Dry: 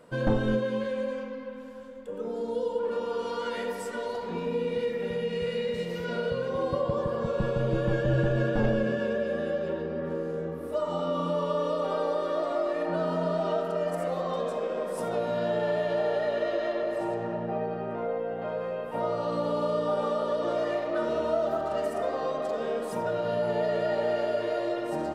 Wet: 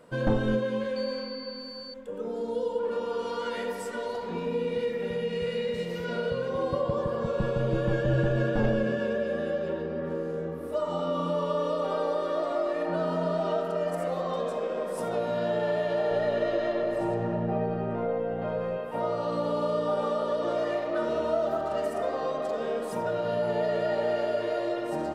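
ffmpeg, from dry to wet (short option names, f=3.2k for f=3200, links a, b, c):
-filter_complex "[0:a]asettb=1/sr,asplit=3[a][b][c];[a]atrim=end=0.964[d];[b]atrim=start=0.96:end=1.94,asetpts=PTS-STARTPTS,afade=t=in:d=0.004:c=qsin,afade=t=out:st=0.976:d=0.004:c=qsin,aeval=exprs='val(0)+0.00891*sin(2*PI*4500*n/s)':c=same[e];[c]atrim=start=1.936[f];[d][e]acrossfade=d=0.004:c1=hsin:c2=qsin[g];[g][f]acrossfade=d=0.004:c1=qsin:c2=hsin,asettb=1/sr,asplit=3[h][i][j];[h]atrim=end=16.114[k];[i]atrim=start=16.11:end=18.78,asetpts=PTS-STARTPTS,afade=t=in:d=0.004:c=qsin,afade=t=out:st=2.666:d=0.004:c=qsin,lowshelf=f=190:g=11.5[l];[j]atrim=start=18.776[m];[k][l]acrossfade=d=0.004:c1=hsin:c2=qsin[n];[n][m]acrossfade=d=0.004:c1=qsin:c2=hsin"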